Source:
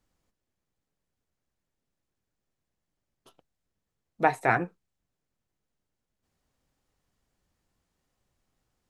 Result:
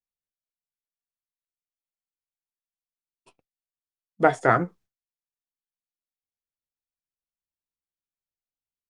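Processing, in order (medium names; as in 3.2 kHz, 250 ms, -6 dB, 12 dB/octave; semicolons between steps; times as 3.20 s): expander -52 dBFS; formant shift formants -3 st; trim +4.5 dB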